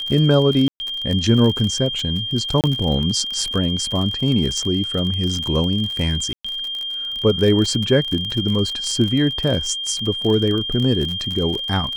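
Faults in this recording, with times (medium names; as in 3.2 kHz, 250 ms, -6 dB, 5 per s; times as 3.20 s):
crackle 41 per s -23 dBFS
whine 3.2 kHz -24 dBFS
0.68–0.80 s: dropout 120 ms
2.61–2.64 s: dropout 28 ms
6.33–6.45 s: dropout 115 ms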